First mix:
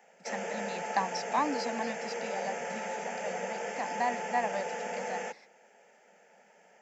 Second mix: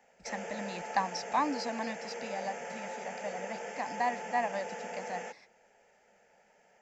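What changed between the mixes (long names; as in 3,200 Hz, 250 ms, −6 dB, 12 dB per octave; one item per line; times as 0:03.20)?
speech: remove Butterworth high-pass 160 Hz 48 dB per octave
background −4.5 dB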